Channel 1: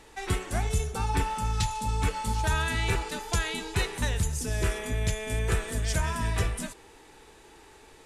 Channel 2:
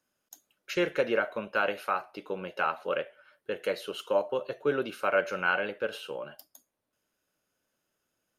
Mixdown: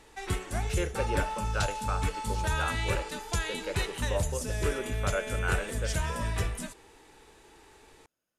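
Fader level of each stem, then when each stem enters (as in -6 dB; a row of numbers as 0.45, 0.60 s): -3.0, -6.0 dB; 0.00, 0.00 s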